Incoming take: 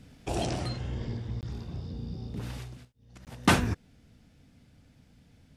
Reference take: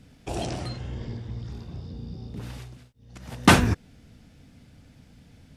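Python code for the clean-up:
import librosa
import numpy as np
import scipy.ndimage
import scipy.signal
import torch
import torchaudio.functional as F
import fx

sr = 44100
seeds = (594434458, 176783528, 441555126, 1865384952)

y = fx.fix_interpolate(x, sr, at_s=(1.41, 3.25), length_ms=18.0)
y = fx.gain(y, sr, db=fx.steps((0.0, 0.0), (2.85, 6.5)))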